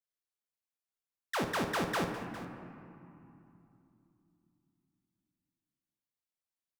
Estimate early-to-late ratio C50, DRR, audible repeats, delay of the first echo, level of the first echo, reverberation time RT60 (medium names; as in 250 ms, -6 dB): 5.0 dB, 4.0 dB, 2, 57 ms, -12.0 dB, 2.7 s